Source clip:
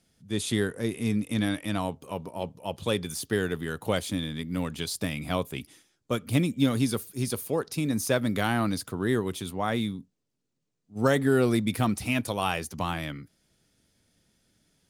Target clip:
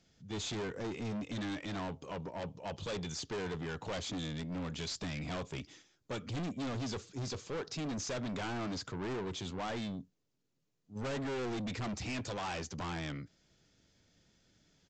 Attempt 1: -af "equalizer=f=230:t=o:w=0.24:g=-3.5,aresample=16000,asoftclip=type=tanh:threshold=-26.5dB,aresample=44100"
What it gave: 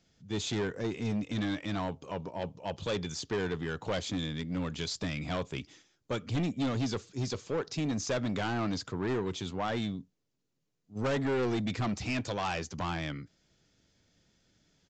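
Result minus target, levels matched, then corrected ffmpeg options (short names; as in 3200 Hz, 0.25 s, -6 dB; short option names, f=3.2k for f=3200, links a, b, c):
soft clip: distortion -5 dB
-af "equalizer=f=230:t=o:w=0.24:g=-3.5,aresample=16000,asoftclip=type=tanh:threshold=-35.5dB,aresample=44100"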